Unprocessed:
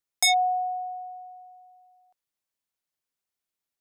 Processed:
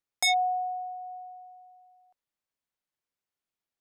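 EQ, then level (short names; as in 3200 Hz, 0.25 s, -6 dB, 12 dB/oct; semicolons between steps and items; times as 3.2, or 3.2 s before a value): dynamic EQ 630 Hz, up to -3 dB, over -38 dBFS, Q 1; high shelf 4800 Hz -9 dB; 0.0 dB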